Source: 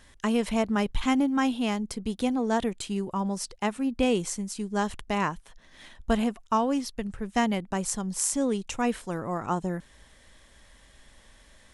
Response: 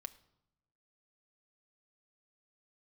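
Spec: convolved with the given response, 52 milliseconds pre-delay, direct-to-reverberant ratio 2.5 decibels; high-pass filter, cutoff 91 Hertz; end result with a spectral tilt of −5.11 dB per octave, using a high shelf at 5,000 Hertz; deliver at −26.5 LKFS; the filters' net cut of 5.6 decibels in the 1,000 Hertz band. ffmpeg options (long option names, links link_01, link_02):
-filter_complex "[0:a]highpass=91,equalizer=frequency=1000:width_type=o:gain=-7,highshelf=frequency=5000:gain=-7,asplit=2[link_01][link_02];[1:a]atrim=start_sample=2205,adelay=52[link_03];[link_02][link_03]afir=irnorm=-1:irlink=0,volume=2dB[link_04];[link_01][link_04]amix=inputs=2:normalize=0,volume=1.5dB"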